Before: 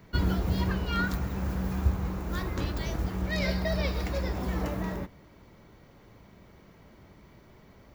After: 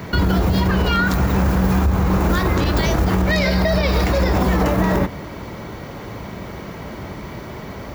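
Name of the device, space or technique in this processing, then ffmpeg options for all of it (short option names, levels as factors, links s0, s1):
mastering chain: -af "highpass=47,equalizer=f=900:t=o:w=2.1:g=2.5,acompressor=threshold=0.0251:ratio=3,alimiter=level_in=31.6:limit=0.891:release=50:level=0:latency=1,volume=0.398"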